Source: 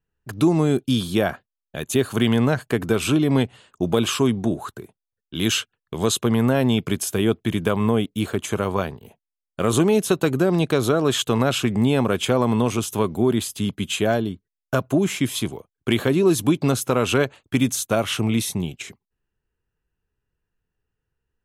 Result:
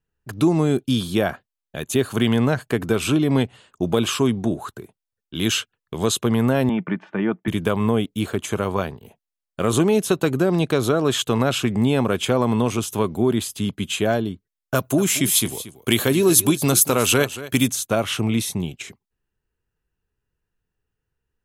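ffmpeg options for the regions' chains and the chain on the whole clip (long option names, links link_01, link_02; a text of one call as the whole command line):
ffmpeg -i in.wav -filter_complex "[0:a]asettb=1/sr,asplit=3[link_01][link_02][link_03];[link_01]atrim=end=6.694[link_04];[link_02]atrim=start=6.69:end=7.48,asetpts=PTS-STARTPTS,afade=type=in:duration=0.004:curve=qsin,afade=type=out:start_time=0.786:duration=0.004:curve=qsin,highpass=frequency=160:width=0.5412,highpass=frequency=160:width=1.3066,equalizer=frequency=180:width_type=q:width=4:gain=8,equalizer=frequency=260:width_type=q:width=4:gain=-7,equalizer=frequency=370:width_type=q:width=4:gain=-4,equalizer=frequency=560:width_type=q:width=4:gain=-3,equalizer=frequency=910:width_type=q:width=4:gain=4,equalizer=frequency=1900:width_type=q:width=4:gain=4,lowpass=frequency=2100:width=0.5412,lowpass=frequency=2100:width=1.3066,aecho=1:1:3.4:0.39,atrim=end_sample=34839[link_05];[link_03]atrim=start=7.476[link_06];[link_04][link_05]acrossfade=duration=0.004:curve1=hsin:curve2=qsin[link_07];[link_07][link_06]acrossfade=duration=0.004:curve1=qsin:curve2=hsin,asettb=1/sr,asplit=3[link_08][link_09][link_10];[link_08]atrim=end=14.754[link_11];[link_09]atrim=start=14.75:end=17.68,asetpts=PTS-STARTPTS,afade=type=in:duration=0.004:curve=qsin,afade=type=out:start_time=2.926:duration=0.004:curve=qsin,aemphasis=mode=production:type=75kf,aecho=1:1:231:0.178,atrim=end_sample=129213[link_12];[link_10]atrim=start=17.676[link_13];[link_11][link_12]acrossfade=duration=0.004:curve1=hsin:curve2=qsin[link_14];[link_14][link_13]acrossfade=duration=0.004:curve1=qsin:curve2=hsin" out.wav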